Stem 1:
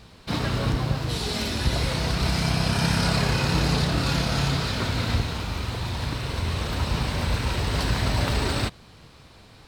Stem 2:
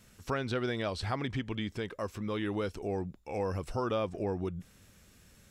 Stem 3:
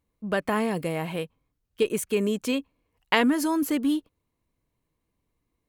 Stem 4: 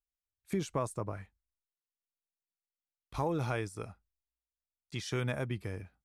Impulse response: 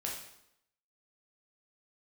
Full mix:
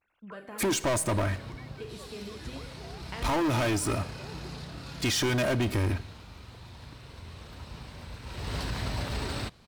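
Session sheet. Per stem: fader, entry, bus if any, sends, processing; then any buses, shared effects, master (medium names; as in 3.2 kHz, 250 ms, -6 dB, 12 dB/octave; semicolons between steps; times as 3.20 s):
8.21 s -18 dB -> 8.51 s -8 dB, 0.80 s, no bus, no send, none
-2.5 dB, 0.00 s, bus A, no send, formants replaced by sine waves; high-pass 670 Hz
-12.5 dB, 0.00 s, bus A, send -12 dB, none
+1.5 dB, 0.10 s, no bus, send -16 dB, comb 3.2 ms, depth 75%; waveshaping leveller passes 5
bus A: 0.0 dB, low-pass 8.4 kHz 12 dB/octave; compression 4:1, threshold -46 dBFS, peak gain reduction 15 dB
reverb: on, RT60 0.80 s, pre-delay 6 ms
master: peak limiter -22.5 dBFS, peak gain reduction 7 dB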